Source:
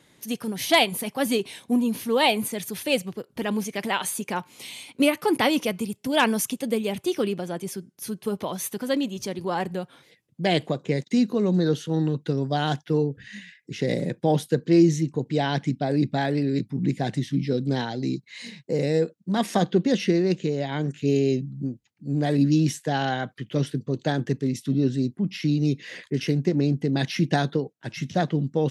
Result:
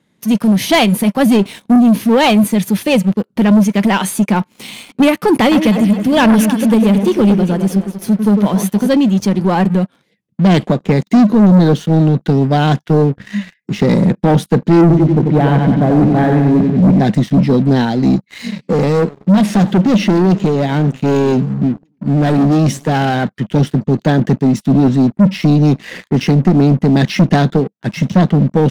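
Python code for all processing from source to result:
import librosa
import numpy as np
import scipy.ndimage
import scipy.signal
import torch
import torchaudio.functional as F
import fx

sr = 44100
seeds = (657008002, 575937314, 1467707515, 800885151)

y = fx.chain(x, sr, fx.law_mismatch(coded='A'),
    fx.echo_alternate(ms=102, hz=1900.0, feedback_pct=64, wet_db=-7.5), at=(5.41, 8.87))
y = fx.chain(y, sr, fx.air_absorb(metres=480.0),
    fx.echo_feedback(ms=91, feedback_pct=60, wet_db=-5.0), at=(14.81, 17.0))
y = fx.chain(y, sr, fx.clip_hard(threshold_db=-22.5),
    fx.echo_warbled(ms=93, feedback_pct=52, rate_hz=2.8, cents=209, wet_db=-21), at=(18.42, 23.28))
y = fx.peak_eq(y, sr, hz=200.0, db=12.0, octaves=0.5)
y = fx.leveller(y, sr, passes=3)
y = fx.high_shelf(y, sr, hz=3400.0, db=-6.5)
y = F.gain(torch.from_numpy(y), 1.5).numpy()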